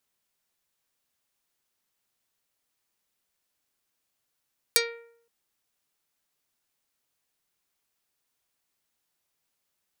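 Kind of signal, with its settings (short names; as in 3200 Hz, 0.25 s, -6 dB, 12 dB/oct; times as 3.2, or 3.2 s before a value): plucked string A#4, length 0.52 s, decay 0.66 s, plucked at 0.47, dark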